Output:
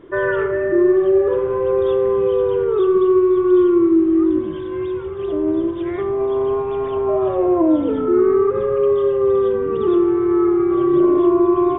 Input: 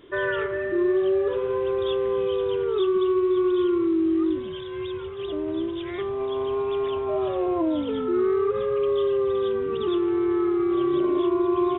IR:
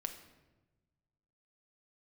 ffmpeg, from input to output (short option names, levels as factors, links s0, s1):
-filter_complex "[0:a]highshelf=f=3000:g=-11.5,asplit=2[s0][s1];[1:a]atrim=start_sample=2205,lowpass=2400[s2];[s1][s2]afir=irnorm=-1:irlink=0,volume=1.78[s3];[s0][s3]amix=inputs=2:normalize=0"